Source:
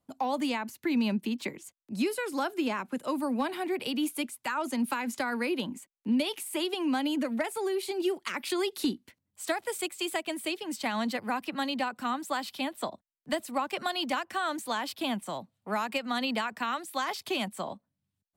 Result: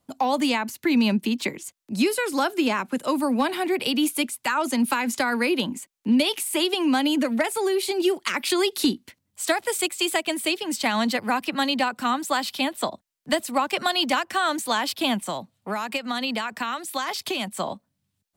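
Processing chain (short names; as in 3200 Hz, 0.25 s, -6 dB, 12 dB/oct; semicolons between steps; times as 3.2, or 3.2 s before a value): high shelf 7800 Hz -6 dB; 15.3–17.57 compressor 4:1, threshold -33 dBFS, peak gain reduction 6.5 dB; high shelf 3500 Hz +7.5 dB; gain +7 dB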